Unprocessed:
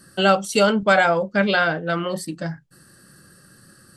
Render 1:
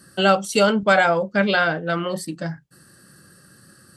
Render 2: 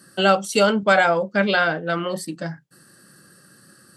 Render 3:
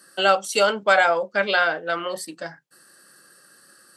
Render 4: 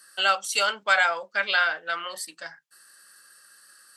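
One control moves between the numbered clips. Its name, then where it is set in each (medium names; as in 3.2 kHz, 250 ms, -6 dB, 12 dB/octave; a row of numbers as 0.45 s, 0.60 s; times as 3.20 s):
high-pass, cutoff frequency: 50 Hz, 150 Hz, 460 Hz, 1.2 kHz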